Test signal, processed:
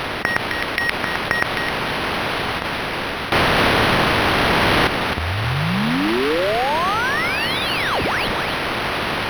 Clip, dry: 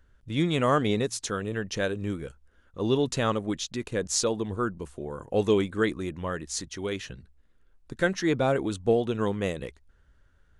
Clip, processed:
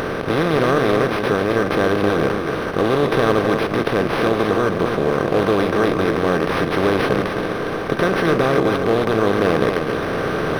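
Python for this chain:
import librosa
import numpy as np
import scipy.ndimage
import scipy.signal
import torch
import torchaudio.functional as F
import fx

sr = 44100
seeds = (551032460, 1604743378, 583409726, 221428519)

p1 = fx.bin_compress(x, sr, power=0.2)
p2 = fx.rider(p1, sr, range_db=4, speed_s=2.0)
p3 = 10.0 ** (-3.0 / 20.0) * np.tanh(p2 / 10.0 ** (-3.0 / 20.0))
p4 = p3 + fx.echo_single(p3, sr, ms=261, db=-6.0, dry=0)
y = np.interp(np.arange(len(p4)), np.arange(len(p4))[::6], p4[::6])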